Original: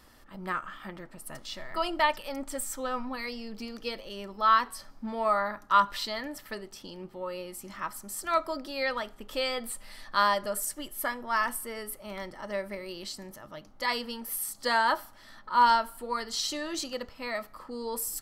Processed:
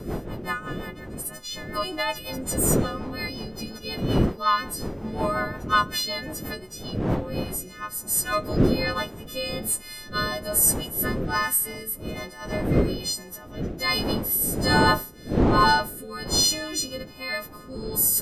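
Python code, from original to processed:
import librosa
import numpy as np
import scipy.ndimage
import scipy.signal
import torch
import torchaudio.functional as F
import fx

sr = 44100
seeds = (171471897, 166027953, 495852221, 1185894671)

y = fx.freq_snap(x, sr, grid_st=3)
y = fx.dmg_wind(y, sr, seeds[0], corner_hz=380.0, level_db=-30.0)
y = fx.rotary_switch(y, sr, hz=5.5, then_hz=1.2, switch_at_s=6.69)
y = y * librosa.db_to_amplitude(2.5)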